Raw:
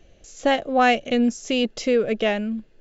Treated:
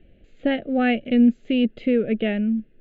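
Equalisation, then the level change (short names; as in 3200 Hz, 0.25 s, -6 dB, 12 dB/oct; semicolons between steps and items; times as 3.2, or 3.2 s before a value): air absorption 290 m; bell 230 Hz +6 dB 0.93 oct; fixed phaser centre 2400 Hz, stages 4; 0.0 dB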